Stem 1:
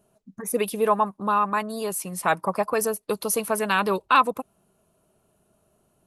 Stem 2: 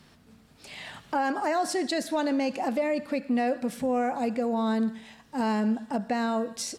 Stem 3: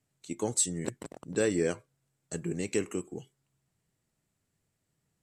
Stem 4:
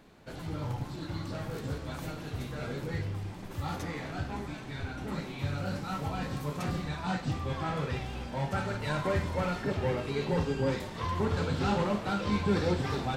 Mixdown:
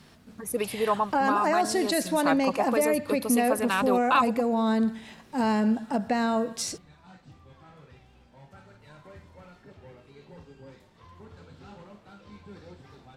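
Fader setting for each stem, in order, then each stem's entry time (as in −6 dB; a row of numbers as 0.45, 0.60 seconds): −4.5 dB, +2.0 dB, muted, −19.0 dB; 0.00 s, 0.00 s, muted, 0.00 s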